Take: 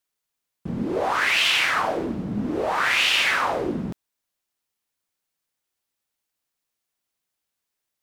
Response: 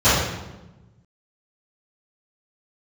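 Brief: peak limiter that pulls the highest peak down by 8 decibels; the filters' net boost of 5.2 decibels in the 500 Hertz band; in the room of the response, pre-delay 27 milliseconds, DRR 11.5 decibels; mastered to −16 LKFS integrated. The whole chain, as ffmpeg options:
-filter_complex "[0:a]equalizer=frequency=500:width_type=o:gain=6.5,alimiter=limit=-16dB:level=0:latency=1,asplit=2[link_01][link_02];[1:a]atrim=start_sample=2205,adelay=27[link_03];[link_02][link_03]afir=irnorm=-1:irlink=0,volume=-35.5dB[link_04];[link_01][link_04]amix=inputs=2:normalize=0,volume=8dB"

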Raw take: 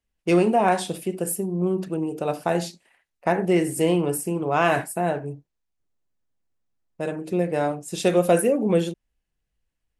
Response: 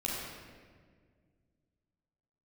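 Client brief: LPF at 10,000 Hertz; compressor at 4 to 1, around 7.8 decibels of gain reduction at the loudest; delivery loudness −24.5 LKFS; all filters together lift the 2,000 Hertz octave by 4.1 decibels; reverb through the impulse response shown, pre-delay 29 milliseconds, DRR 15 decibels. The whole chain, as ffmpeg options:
-filter_complex "[0:a]lowpass=10000,equalizer=frequency=2000:width_type=o:gain=5.5,acompressor=threshold=-23dB:ratio=4,asplit=2[link_01][link_02];[1:a]atrim=start_sample=2205,adelay=29[link_03];[link_02][link_03]afir=irnorm=-1:irlink=0,volume=-20dB[link_04];[link_01][link_04]amix=inputs=2:normalize=0,volume=3.5dB"

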